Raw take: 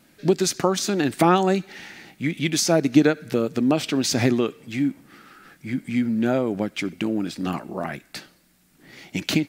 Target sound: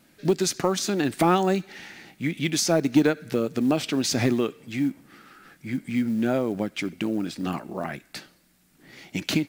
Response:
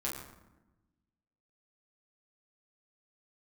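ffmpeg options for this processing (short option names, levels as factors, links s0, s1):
-af "acontrast=25,acrusher=bits=8:mode=log:mix=0:aa=0.000001,volume=0.447"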